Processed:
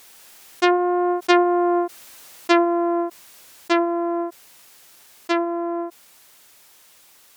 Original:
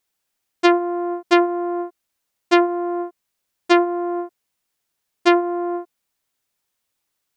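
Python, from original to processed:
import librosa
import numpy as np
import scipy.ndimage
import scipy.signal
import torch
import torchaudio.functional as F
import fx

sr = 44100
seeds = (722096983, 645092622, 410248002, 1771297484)

y = fx.doppler_pass(x, sr, speed_mps=8, closest_m=6.9, pass_at_s=1.79)
y = fx.low_shelf(y, sr, hz=230.0, db=-8.5)
y = fx.env_flatten(y, sr, amount_pct=50)
y = y * librosa.db_to_amplitude(1.0)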